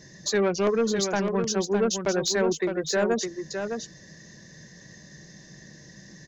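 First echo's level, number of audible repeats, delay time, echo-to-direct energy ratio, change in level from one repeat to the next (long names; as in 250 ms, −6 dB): −6.5 dB, 1, 610 ms, −6.5 dB, repeats not evenly spaced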